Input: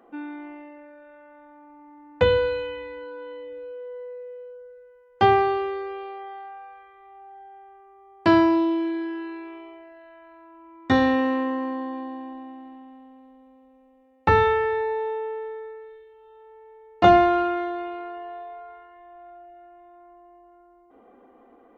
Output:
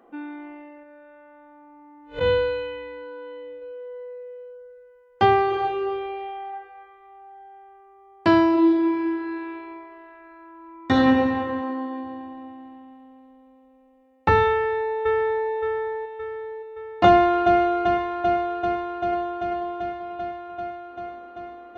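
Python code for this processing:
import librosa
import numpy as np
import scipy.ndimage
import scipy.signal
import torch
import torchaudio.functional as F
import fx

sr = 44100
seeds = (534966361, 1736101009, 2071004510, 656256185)

y = fx.spec_blur(x, sr, span_ms=125.0, at=(0.83, 3.62))
y = fx.reverb_throw(y, sr, start_s=5.46, length_s=1.0, rt60_s=1.2, drr_db=-4.5)
y = fx.reverb_throw(y, sr, start_s=8.49, length_s=2.46, rt60_s=2.5, drr_db=-1.0)
y = fx.brickwall_highpass(y, sr, low_hz=180.0, at=(11.61, 12.04))
y = fx.echo_throw(y, sr, start_s=14.48, length_s=1.0, ms=570, feedback_pct=50, wet_db=-2.5)
y = fx.echo_throw(y, sr, start_s=17.07, length_s=0.51, ms=390, feedback_pct=80, wet_db=-4.5)
y = fx.echo_throw(y, sr, start_s=18.55, length_s=0.85, ms=490, feedback_pct=55, wet_db=-10.5)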